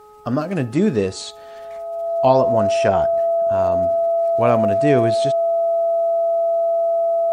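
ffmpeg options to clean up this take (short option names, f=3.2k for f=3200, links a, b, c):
-af "bandreject=f=422:t=h:w=4,bandreject=f=844:t=h:w=4,bandreject=f=1.266k:t=h:w=4,bandreject=f=670:w=30"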